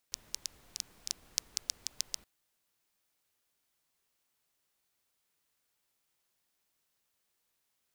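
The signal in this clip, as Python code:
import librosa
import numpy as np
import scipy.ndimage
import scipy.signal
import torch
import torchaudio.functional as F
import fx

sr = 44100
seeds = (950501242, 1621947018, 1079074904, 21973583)

y = fx.rain(sr, seeds[0], length_s=2.12, drops_per_s=6.1, hz=5500.0, bed_db=-19.0)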